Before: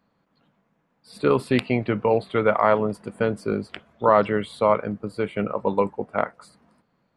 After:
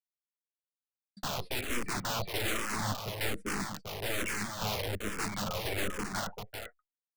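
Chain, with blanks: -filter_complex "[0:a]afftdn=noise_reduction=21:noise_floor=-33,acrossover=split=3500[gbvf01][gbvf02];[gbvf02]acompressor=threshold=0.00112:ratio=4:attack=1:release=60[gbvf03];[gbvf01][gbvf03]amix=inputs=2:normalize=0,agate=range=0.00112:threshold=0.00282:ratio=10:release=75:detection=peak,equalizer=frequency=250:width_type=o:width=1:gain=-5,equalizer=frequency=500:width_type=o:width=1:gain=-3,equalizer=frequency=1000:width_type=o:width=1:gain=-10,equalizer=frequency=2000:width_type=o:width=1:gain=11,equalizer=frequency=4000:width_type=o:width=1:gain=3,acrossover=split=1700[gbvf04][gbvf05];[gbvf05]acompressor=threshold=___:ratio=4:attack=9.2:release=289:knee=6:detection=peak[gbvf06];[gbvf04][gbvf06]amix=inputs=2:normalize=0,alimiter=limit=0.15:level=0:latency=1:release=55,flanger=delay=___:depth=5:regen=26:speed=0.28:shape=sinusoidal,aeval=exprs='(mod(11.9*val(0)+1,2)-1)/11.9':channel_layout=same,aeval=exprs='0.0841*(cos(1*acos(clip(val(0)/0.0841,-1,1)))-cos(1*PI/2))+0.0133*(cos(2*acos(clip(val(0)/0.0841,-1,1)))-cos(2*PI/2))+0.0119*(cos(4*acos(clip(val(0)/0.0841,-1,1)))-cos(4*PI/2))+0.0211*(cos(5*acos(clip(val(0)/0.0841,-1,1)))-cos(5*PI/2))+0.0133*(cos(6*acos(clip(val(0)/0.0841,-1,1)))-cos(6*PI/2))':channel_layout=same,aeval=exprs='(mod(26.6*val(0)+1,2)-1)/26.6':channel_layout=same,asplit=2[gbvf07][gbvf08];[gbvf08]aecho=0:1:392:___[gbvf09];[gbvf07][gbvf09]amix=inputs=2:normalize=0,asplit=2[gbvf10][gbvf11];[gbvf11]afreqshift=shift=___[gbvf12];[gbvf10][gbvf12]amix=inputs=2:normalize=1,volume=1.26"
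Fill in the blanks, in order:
0.00708, 6.3, 0.531, -1.2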